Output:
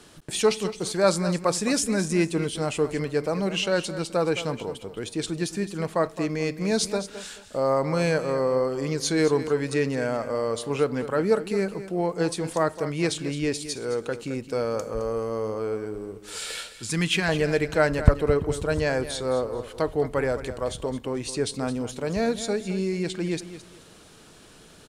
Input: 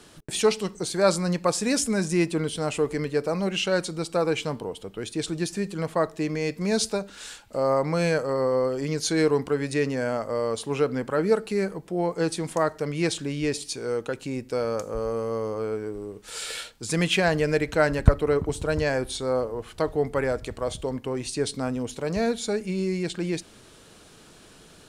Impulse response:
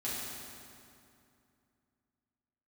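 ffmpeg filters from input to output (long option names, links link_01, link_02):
-filter_complex "[0:a]asettb=1/sr,asplit=3[link_01][link_02][link_03];[link_01]atrim=end=16.704[link_04];[link_02]atrim=start=16.7:end=17.29,asetpts=PTS-STARTPTS,afade=type=in:duration=0.004:curve=qsin,afade=type=out:start_time=0.586:duration=0.004:curve=qsin,equalizer=frequency=580:width=2.1:gain=-14.5[link_05];[link_03]atrim=start=17.286[link_06];[link_04][link_05]acrossfade=duration=0.004:curve1=hsin:curve2=qsin[link_07];[link_07][link_06]acrossfade=duration=0.004:curve1=qsin:curve2=hsin,aecho=1:1:215|430|645:0.224|0.0627|0.0176"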